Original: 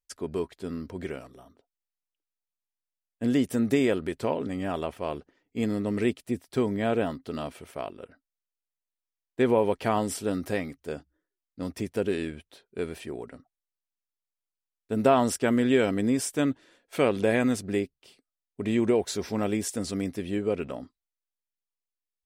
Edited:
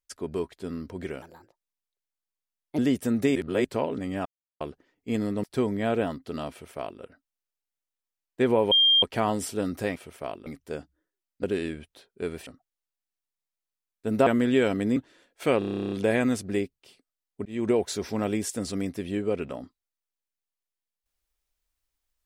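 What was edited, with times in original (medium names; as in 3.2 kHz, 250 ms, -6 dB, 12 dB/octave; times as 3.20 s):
1.22–3.27 s: speed 131%
3.84–4.13 s: reverse
4.74–5.09 s: mute
5.92–6.43 s: delete
7.50–8.01 s: copy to 10.64 s
9.71 s: add tone 3.2 kHz -16 dBFS 0.31 s
11.61–12.00 s: delete
13.03–13.32 s: delete
15.12–15.44 s: delete
16.14–16.49 s: delete
17.11 s: stutter 0.03 s, 12 plays
18.65–18.90 s: fade in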